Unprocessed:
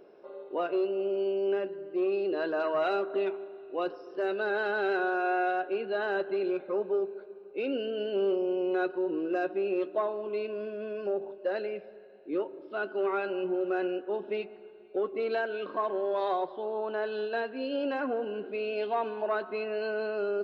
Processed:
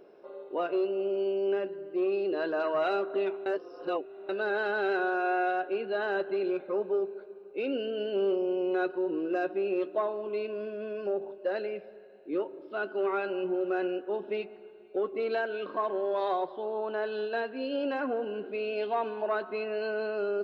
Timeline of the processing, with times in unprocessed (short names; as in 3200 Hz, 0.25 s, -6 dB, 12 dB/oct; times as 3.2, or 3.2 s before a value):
3.46–4.29 reverse